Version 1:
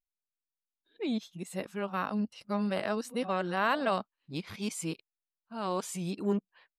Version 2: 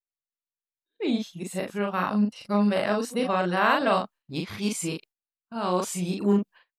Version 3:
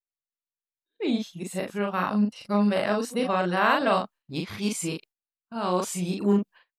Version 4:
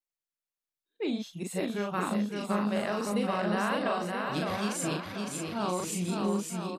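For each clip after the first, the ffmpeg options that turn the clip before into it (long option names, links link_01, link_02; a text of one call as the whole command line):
ffmpeg -i in.wav -filter_complex "[0:a]agate=range=-21dB:threshold=-54dB:ratio=16:detection=peak,asplit=2[link_01][link_02];[link_02]adelay=39,volume=-3dB[link_03];[link_01][link_03]amix=inputs=2:normalize=0,volume=5dB" out.wav
ffmpeg -i in.wav -af anull out.wav
ffmpeg -i in.wav -af "acompressor=threshold=-26dB:ratio=6,aecho=1:1:560|980|1295|1531|1708:0.631|0.398|0.251|0.158|0.1,volume=-1.5dB" out.wav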